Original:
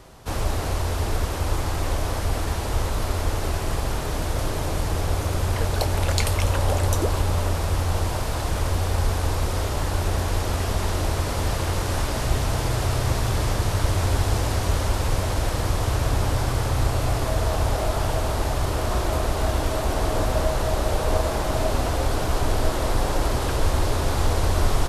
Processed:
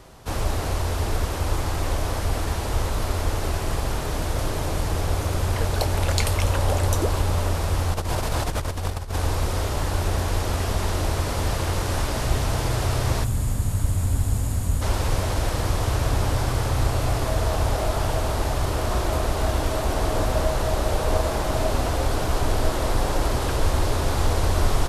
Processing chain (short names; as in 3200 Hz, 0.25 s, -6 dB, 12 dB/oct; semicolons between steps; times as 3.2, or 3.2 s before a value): 7.94–9.16 negative-ratio compressor -25 dBFS, ratio -0.5; 13.24–14.82 spectral gain 300–6500 Hz -11 dB